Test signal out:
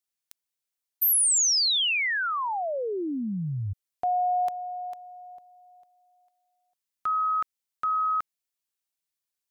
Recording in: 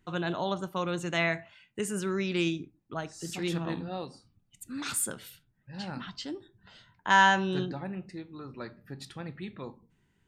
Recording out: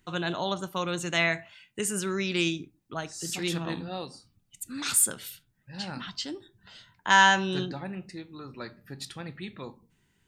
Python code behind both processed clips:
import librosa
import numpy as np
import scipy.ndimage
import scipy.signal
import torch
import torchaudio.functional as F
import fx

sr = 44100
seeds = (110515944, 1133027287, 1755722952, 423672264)

y = fx.high_shelf(x, sr, hz=2400.0, db=8.5)